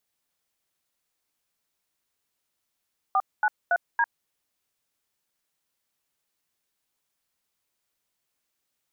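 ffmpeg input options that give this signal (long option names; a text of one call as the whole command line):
ffmpeg -f lavfi -i "aevalsrc='0.0841*clip(min(mod(t,0.28),0.051-mod(t,0.28))/0.002,0,1)*(eq(floor(t/0.28),0)*(sin(2*PI*770*mod(t,0.28))+sin(2*PI*1209*mod(t,0.28)))+eq(floor(t/0.28),1)*(sin(2*PI*852*mod(t,0.28))+sin(2*PI*1477*mod(t,0.28)))+eq(floor(t/0.28),2)*(sin(2*PI*697*mod(t,0.28))+sin(2*PI*1477*mod(t,0.28)))+eq(floor(t/0.28),3)*(sin(2*PI*941*mod(t,0.28))+sin(2*PI*1633*mod(t,0.28))))':duration=1.12:sample_rate=44100" out.wav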